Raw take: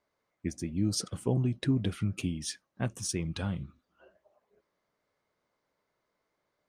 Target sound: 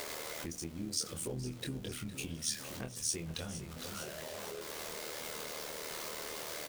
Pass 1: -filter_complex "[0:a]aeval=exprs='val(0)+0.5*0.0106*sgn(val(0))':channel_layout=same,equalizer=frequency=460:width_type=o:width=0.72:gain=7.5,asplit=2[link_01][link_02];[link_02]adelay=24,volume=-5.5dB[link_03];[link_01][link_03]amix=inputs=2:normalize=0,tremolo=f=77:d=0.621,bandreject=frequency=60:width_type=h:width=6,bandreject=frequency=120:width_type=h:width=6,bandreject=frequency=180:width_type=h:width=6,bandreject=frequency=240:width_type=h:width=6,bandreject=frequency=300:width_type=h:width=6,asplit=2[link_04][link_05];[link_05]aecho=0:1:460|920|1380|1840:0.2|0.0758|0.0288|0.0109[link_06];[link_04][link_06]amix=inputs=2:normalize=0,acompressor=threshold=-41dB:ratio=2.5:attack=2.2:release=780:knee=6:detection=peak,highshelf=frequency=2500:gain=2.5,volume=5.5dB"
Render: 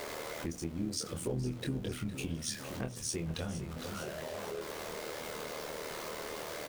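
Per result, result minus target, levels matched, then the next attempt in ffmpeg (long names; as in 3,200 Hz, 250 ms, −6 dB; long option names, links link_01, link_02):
downward compressor: peak gain reduction −5 dB; 4,000 Hz band −2.5 dB
-filter_complex "[0:a]aeval=exprs='val(0)+0.5*0.0106*sgn(val(0))':channel_layout=same,equalizer=frequency=460:width_type=o:width=0.72:gain=7.5,asplit=2[link_01][link_02];[link_02]adelay=24,volume=-5.5dB[link_03];[link_01][link_03]amix=inputs=2:normalize=0,tremolo=f=77:d=0.621,bandreject=frequency=60:width_type=h:width=6,bandreject=frequency=120:width_type=h:width=6,bandreject=frequency=180:width_type=h:width=6,bandreject=frequency=240:width_type=h:width=6,bandreject=frequency=300:width_type=h:width=6,asplit=2[link_04][link_05];[link_05]aecho=0:1:460|920|1380|1840:0.2|0.0758|0.0288|0.0109[link_06];[link_04][link_06]amix=inputs=2:normalize=0,acompressor=threshold=-49.5dB:ratio=2.5:attack=2.2:release=780:knee=6:detection=peak,highshelf=frequency=2500:gain=2.5,volume=5.5dB"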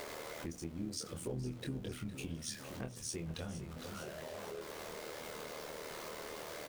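4,000 Hz band −2.5 dB
-filter_complex "[0:a]aeval=exprs='val(0)+0.5*0.0106*sgn(val(0))':channel_layout=same,equalizer=frequency=460:width_type=o:width=0.72:gain=7.5,asplit=2[link_01][link_02];[link_02]adelay=24,volume=-5.5dB[link_03];[link_01][link_03]amix=inputs=2:normalize=0,tremolo=f=77:d=0.621,bandreject=frequency=60:width_type=h:width=6,bandreject=frequency=120:width_type=h:width=6,bandreject=frequency=180:width_type=h:width=6,bandreject=frequency=240:width_type=h:width=6,bandreject=frequency=300:width_type=h:width=6,asplit=2[link_04][link_05];[link_05]aecho=0:1:460|920|1380|1840:0.2|0.0758|0.0288|0.0109[link_06];[link_04][link_06]amix=inputs=2:normalize=0,acompressor=threshold=-49.5dB:ratio=2.5:attack=2.2:release=780:knee=6:detection=peak,highshelf=frequency=2500:gain=11.5,volume=5.5dB"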